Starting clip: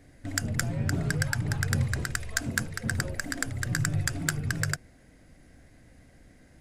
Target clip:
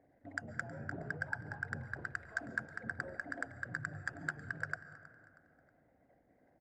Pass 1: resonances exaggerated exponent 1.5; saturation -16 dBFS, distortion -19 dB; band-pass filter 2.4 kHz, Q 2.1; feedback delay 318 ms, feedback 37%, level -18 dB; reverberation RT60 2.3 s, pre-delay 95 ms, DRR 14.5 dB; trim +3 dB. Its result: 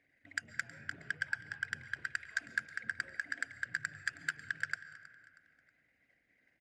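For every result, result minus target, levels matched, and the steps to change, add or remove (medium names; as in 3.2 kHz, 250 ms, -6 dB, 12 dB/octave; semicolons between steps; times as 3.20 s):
saturation: distortion +14 dB; 1 kHz band -6.0 dB
change: saturation -7.5 dBFS, distortion -33 dB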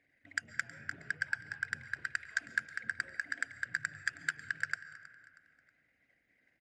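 1 kHz band -5.5 dB
change: band-pass filter 790 Hz, Q 2.1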